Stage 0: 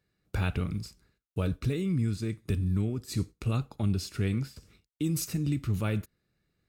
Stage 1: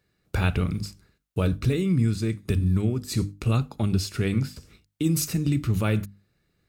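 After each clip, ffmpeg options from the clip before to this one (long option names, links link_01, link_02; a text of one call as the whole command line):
ffmpeg -i in.wav -af "bandreject=frequency=50:width_type=h:width=6,bandreject=frequency=100:width_type=h:width=6,bandreject=frequency=150:width_type=h:width=6,bandreject=frequency=200:width_type=h:width=6,bandreject=frequency=250:width_type=h:width=6,bandreject=frequency=300:width_type=h:width=6,volume=6.5dB" out.wav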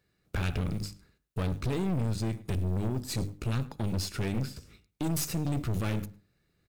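ffmpeg -i in.wav -filter_complex "[0:a]acrusher=bits=7:mode=log:mix=0:aa=0.000001,aeval=exprs='(tanh(22.4*val(0)+0.55)-tanh(0.55))/22.4':channel_layout=same,asplit=2[link_01][link_02];[link_02]adelay=106,lowpass=frequency=2400:poles=1,volume=-18dB,asplit=2[link_03][link_04];[link_04]adelay=106,lowpass=frequency=2400:poles=1,volume=0.18[link_05];[link_01][link_03][link_05]amix=inputs=3:normalize=0" out.wav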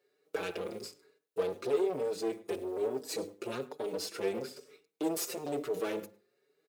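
ffmpeg -i in.wav -filter_complex "[0:a]highpass=frequency=430:width_type=q:width=4.9,asoftclip=type=tanh:threshold=-16dB,asplit=2[link_01][link_02];[link_02]adelay=5.1,afreqshift=1.1[link_03];[link_01][link_03]amix=inputs=2:normalize=1" out.wav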